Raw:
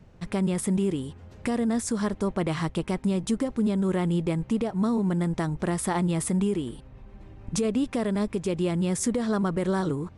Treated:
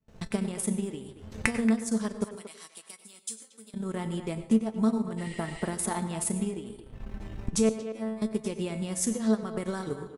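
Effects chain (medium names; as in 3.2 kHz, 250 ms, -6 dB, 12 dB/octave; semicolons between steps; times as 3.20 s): recorder AGC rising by 31 dB/s; gate with hold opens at -41 dBFS; treble shelf 5.4 kHz +8 dB; feedback comb 220 Hz, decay 0.3 s, harmonics all, mix 80%; transient shaper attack +6 dB, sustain -12 dB; 2.24–3.74 s: differentiator; 5.21–5.66 s: spectral replace 1.8–9.3 kHz after; 7.69–8.22 s: feedback comb 110 Hz, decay 0.43 s, harmonics all, mix 100%; speakerphone echo 230 ms, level -11 dB; reverberation RT60 0.40 s, pre-delay 87 ms, DRR 12 dB; trim +3.5 dB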